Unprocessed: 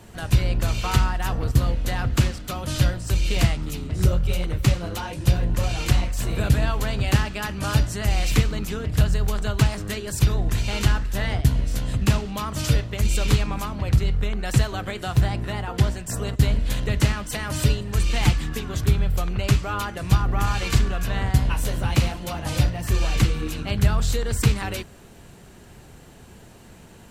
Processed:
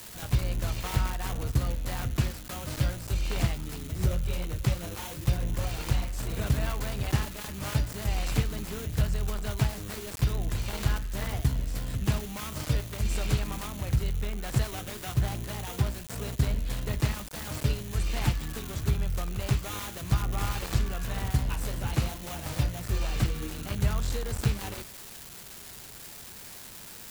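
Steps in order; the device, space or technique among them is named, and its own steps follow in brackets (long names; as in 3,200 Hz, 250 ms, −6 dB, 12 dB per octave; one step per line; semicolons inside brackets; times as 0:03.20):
budget class-D amplifier (gap after every zero crossing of 0.3 ms; spike at every zero crossing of −17 dBFS)
level −7.5 dB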